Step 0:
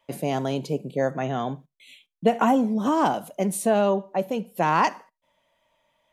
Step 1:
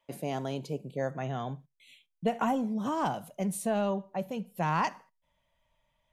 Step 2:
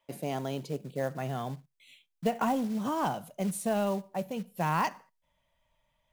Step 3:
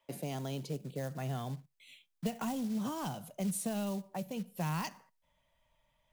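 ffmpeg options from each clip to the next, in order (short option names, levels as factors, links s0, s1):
-af "asubboost=boost=7.5:cutoff=120,volume=0.422"
-af "acrusher=bits=5:mode=log:mix=0:aa=0.000001"
-filter_complex "[0:a]acrossover=split=210|3000[s0][s1][s2];[s1]acompressor=threshold=0.01:ratio=4[s3];[s0][s3][s2]amix=inputs=3:normalize=0"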